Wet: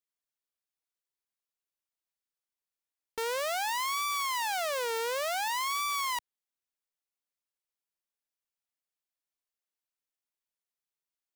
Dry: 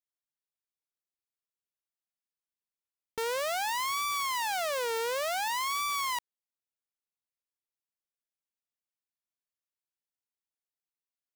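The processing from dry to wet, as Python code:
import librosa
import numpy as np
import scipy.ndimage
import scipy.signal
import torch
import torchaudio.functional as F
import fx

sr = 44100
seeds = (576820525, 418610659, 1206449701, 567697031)

y = fx.peak_eq(x, sr, hz=130.0, db=-11.5, octaves=1.3)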